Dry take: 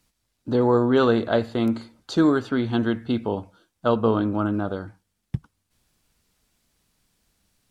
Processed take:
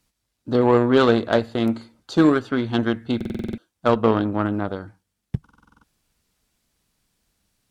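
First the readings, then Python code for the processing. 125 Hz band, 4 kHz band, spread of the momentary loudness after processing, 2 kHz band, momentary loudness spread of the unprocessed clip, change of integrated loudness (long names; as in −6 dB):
+1.5 dB, +3.5 dB, 16 LU, +3.5 dB, 16 LU, +2.5 dB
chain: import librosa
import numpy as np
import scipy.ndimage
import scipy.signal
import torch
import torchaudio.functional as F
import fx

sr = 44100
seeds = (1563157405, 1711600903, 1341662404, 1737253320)

y = fx.cheby_harmonics(x, sr, harmonics=(3, 7), levels_db=(-27, -26), full_scale_db=-6.0)
y = fx.buffer_glitch(y, sr, at_s=(3.16, 5.42), block=2048, repeats=8)
y = y * 10.0 ** (4.0 / 20.0)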